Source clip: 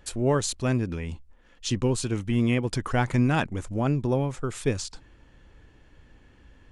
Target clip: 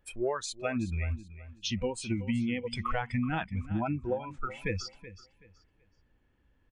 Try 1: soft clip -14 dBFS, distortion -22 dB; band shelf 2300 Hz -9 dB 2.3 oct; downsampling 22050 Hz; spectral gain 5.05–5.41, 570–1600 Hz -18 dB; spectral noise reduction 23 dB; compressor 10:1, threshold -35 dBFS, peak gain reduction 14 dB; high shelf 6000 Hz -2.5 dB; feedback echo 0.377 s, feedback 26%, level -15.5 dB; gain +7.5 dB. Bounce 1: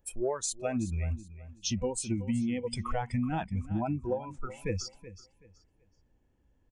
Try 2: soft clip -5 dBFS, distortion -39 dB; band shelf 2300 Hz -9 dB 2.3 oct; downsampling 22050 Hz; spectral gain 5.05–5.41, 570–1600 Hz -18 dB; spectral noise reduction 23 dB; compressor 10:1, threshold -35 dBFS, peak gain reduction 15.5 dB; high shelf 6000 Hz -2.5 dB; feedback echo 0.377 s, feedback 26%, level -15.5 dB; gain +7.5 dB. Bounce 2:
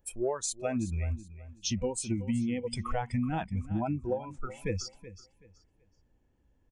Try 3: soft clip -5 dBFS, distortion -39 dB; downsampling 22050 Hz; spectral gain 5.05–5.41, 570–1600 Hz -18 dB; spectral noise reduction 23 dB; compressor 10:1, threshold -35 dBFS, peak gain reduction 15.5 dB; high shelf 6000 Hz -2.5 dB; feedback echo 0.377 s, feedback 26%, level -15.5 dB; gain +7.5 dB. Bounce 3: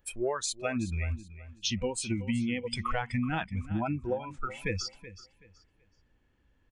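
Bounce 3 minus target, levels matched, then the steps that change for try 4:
8000 Hz band +5.5 dB
change: high shelf 6000 Hz -13 dB

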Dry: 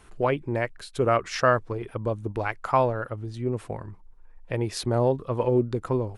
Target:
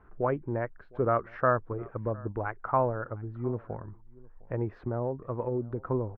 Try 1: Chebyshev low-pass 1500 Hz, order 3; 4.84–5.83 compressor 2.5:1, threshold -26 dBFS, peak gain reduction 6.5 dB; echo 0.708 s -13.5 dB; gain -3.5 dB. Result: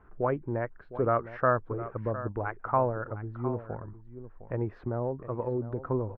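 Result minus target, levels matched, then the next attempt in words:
echo-to-direct +10.5 dB
Chebyshev low-pass 1500 Hz, order 3; 4.84–5.83 compressor 2.5:1, threshold -26 dBFS, peak gain reduction 6.5 dB; echo 0.708 s -24 dB; gain -3.5 dB

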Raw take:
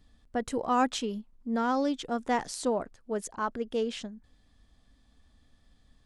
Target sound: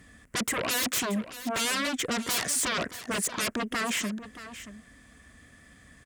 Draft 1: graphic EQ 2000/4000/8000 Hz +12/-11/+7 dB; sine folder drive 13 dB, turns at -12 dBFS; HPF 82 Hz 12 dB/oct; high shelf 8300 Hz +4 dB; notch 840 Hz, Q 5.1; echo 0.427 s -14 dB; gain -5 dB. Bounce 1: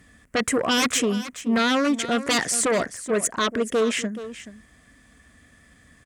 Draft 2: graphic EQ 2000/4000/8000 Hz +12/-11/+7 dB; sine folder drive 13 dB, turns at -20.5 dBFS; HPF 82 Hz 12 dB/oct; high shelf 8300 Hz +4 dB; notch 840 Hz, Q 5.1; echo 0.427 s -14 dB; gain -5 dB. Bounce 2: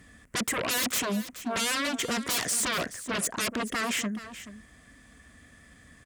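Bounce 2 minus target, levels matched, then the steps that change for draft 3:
echo 0.201 s early
change: echo 0.628 s -14 dB

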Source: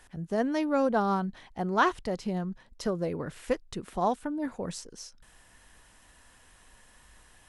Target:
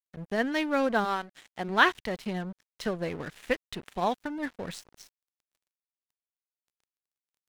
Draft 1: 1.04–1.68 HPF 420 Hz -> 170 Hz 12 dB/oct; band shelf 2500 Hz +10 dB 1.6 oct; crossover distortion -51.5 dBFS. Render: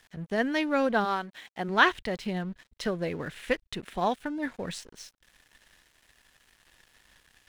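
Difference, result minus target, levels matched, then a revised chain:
crossover distortion: distortion -7 dB
1.04–1.68 HPF 420 Hz -> 170 Hz 12 dB/oct; band shelf 2500 Hz +10 dB 1.6 oct; crossover distortion -42 dBFS

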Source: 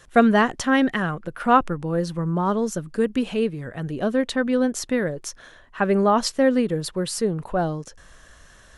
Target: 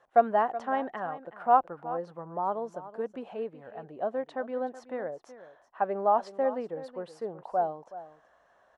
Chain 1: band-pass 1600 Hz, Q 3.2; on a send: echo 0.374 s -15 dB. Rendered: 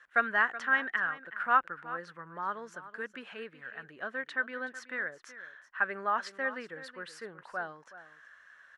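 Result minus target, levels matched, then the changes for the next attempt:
2000 Hz band +16.0 dB
change: band-pass 750 Hz, Q 3.2

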